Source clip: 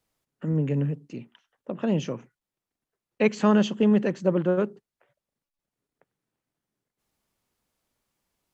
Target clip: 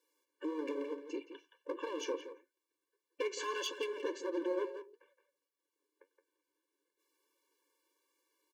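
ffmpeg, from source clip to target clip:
ffmpeg -i in.wav -filter_complex "[0:a]asettb=1/sr,asplit=3[link_01][link_02][link_03];[link_01]atrim=end=3.384[link_04];[link_02]atrim=start=3.38:end=3.93,asetpts=PTS-STARTPTS,afade=type=in:duration=0.004:curve=qsin,afade=type=out:start_time=0.546:duration=0.004:curve=qsin,equalizer=frequency=180:width=0.34:gain=-14[link_05];[link_03]atrim=start=3.926[link_06];[link_04][link_05]acrossfade=duration=0.004:curve1=hsin:curve2=qsin[link_07];[link_07][link_06]acrossfade=duration=0.004:curve1=qsin:curve2=hsin,alimiter=limit=-20dB:level=0:latency=1:release=128,acrossover=split=220|3000[link_08][link_09][link_10];[link_09]acompressor=threshold=-32dB:ratio=4[link_11];[link_08][link_11][link_10]amix=inputs=3:normalize=0,volume=30.5dB,asoftclip=hard,volume=-30.5dB,flanger=delay=5.7:depth=8:regen=59:speed=1.6:shape=triangular,asplit=2[link_12][link_13];[link_13]adelay=170,highpass=300,lowpass=3400,asoftclip=type=hard:threshold=-40dB,volume=-8dB[link_14];[link_12][link_14]amix=inputs=2:normalize=0,afftfilt=real='re*eq(mod(floor(b*sr/1024/300),2),1)':imag='im*eq(mod(floor(b*sr/1024/300),2),1)':win_size=1024:overlap=0.75,volume=6.5dB" out.wav

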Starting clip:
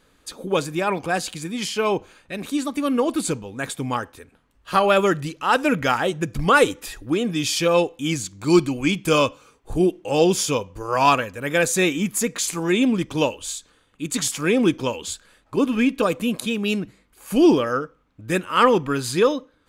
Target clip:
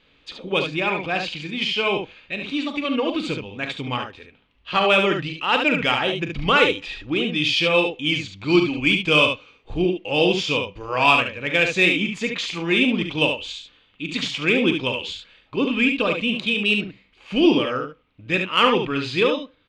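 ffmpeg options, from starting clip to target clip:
ffmpeg -i in.wav -filter_complex "[0:a]lowpass=frequency=2900:width=0.5412,lowpass=frequency=2900:width=1.3066,aexciter=amount=4.3:drive=7.9:freq=2300,asplit=2[link_01][link_02];[link_02]aecho=0:1:40|72:0.299|0.501[link_03];[link_01][link_03]amix=inputs=2:normalize=0,volume=-3dB" out.wav

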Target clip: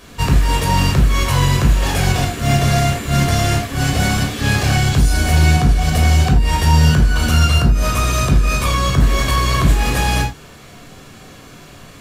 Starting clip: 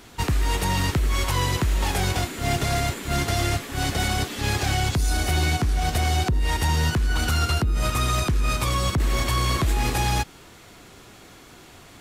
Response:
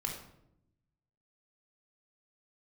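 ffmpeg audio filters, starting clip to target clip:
-filter_complex "[1:a]atrim=start_sample=2205,afade=type=out:start_time=0.18:duration=0.01,atrim=end_sample=8379,asetrate=57330,aresample=44100[link_01];[0:a][link_01]afir=irnorm=-1:irlink=0,volume=7dB"

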